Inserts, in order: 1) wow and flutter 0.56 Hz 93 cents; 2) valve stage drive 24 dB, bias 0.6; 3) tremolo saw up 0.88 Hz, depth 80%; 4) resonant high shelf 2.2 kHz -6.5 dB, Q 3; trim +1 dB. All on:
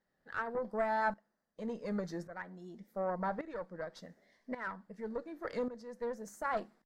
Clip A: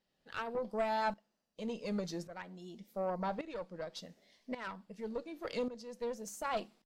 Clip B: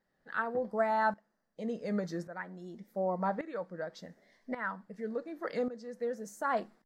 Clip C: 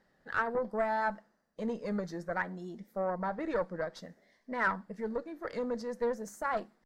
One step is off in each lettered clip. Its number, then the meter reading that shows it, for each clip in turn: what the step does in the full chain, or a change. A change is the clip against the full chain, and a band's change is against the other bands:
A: 4, 4 kHz band +10.0 dB; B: 2, loudness change +3.5 LU; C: 3, momentary loudness spread change -3 LU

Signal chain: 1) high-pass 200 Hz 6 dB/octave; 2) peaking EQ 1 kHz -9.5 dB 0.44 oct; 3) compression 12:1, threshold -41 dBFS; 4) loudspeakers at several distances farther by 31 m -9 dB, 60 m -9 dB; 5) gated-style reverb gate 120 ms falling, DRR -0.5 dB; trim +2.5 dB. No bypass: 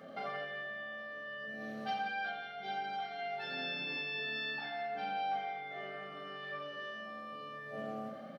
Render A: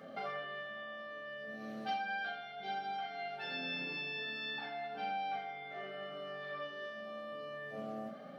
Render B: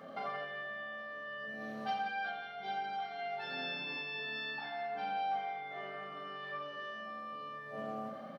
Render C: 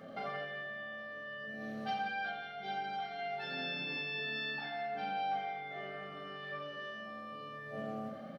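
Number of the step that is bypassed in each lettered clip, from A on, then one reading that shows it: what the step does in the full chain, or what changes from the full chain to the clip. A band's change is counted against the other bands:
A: 4, echo-to-direct 2.0 dB to 0.5 dB; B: 2, 1 kHz band +2.0 dB; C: 1, 125 Hz band +4.0 dB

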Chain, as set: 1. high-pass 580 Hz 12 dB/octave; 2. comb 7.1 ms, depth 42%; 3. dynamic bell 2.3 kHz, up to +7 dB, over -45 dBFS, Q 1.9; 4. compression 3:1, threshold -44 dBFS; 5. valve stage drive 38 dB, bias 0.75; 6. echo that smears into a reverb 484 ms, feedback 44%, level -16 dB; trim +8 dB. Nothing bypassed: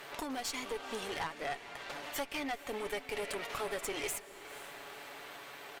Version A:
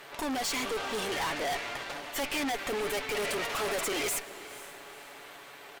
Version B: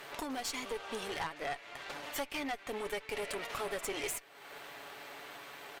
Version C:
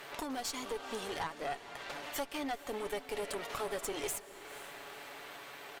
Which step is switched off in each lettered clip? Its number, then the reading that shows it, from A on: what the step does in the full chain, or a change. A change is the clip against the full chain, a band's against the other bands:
4, mean gain reduction 9.5 dB; 6, echo-to-direct -15.0 dB to none; 3, 2 kHz band -3.0 dB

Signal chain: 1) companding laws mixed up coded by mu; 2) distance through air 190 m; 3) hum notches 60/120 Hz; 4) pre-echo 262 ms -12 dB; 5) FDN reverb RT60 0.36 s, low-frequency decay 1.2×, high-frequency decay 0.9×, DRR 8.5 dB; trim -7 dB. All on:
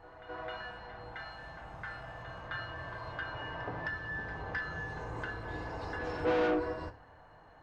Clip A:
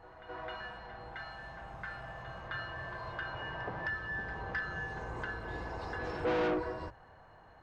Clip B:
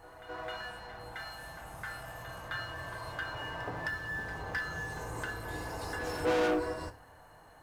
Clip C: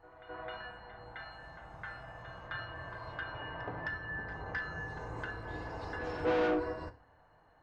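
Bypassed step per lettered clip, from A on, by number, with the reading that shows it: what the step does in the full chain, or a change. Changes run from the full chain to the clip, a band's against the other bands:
5, crest factor change -4.0 dB; 2, 4 kHz band +4.0 dB; 1, distortion -20 dB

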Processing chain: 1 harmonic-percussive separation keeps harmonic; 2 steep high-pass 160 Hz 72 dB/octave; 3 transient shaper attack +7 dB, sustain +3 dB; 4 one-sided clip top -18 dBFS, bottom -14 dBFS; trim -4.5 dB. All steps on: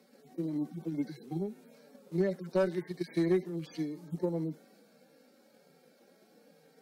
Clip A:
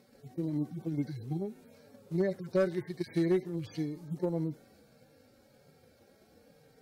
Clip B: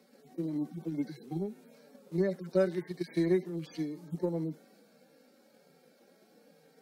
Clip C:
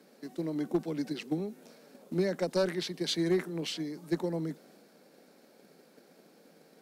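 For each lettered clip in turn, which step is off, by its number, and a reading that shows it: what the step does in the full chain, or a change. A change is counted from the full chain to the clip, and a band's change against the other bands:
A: 2, 125 Hz band +2.5 dB; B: 4, crest factor change +2.5 dB; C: 1, 4 kHz band +14.5 dB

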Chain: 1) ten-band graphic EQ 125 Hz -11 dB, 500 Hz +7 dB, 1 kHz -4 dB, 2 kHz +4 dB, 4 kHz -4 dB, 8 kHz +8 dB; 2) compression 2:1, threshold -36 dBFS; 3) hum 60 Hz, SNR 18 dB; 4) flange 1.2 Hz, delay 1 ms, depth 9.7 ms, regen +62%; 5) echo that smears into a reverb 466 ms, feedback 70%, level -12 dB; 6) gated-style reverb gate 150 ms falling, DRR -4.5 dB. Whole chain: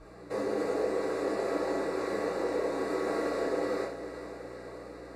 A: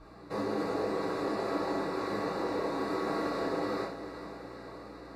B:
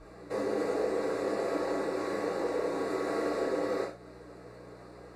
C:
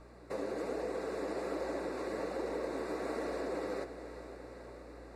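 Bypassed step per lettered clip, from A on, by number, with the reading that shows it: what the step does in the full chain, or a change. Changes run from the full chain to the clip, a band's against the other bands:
1, 8 kHz band -6.0 dB; 5, momentary loudness spread change +6 LU; 6, 125 Hz band +2.5 dB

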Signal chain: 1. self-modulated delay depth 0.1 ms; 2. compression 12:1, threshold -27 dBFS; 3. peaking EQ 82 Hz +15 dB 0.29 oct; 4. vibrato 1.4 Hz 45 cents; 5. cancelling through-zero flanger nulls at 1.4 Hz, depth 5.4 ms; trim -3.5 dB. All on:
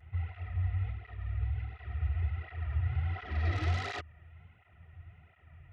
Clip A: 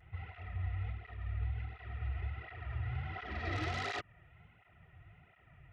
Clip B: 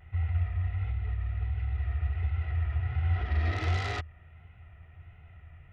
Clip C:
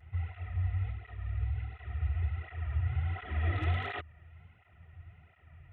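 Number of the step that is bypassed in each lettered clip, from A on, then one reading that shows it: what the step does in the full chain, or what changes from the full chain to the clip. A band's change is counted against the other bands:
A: 3, 125 Hz band -7.0 dB; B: 5, loudness change +4.0 LU; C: 1, 4 kHz band -2.0 dB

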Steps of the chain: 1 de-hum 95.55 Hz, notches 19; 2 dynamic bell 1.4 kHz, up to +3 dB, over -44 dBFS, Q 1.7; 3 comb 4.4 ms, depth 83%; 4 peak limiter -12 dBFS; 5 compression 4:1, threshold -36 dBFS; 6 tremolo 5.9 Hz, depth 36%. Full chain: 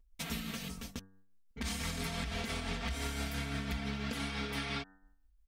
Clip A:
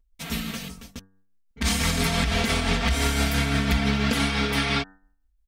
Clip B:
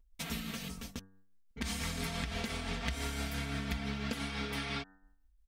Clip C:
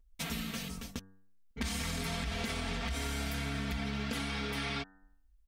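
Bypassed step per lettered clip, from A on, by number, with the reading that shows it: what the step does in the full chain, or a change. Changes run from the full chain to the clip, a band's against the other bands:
5, mean gain reduction 12.0 dB; 4, crest factor change +7.5 dB; 6, loudness change +1.5 LU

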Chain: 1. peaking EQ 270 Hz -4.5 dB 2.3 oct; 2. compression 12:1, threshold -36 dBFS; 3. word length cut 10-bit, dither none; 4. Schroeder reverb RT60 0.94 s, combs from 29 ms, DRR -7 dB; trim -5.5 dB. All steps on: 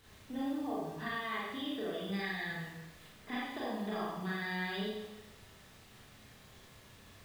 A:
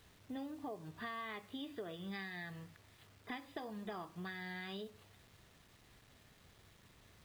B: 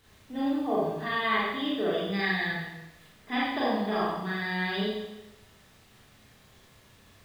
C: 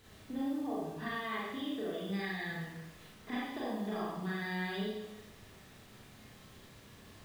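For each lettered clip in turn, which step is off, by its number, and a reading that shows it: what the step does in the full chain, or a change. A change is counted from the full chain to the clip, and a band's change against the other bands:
4, crest factor change +3.0 dB; 2, mean gain reduction 4.5 dB; 1, momentary loudness spread change -1 LU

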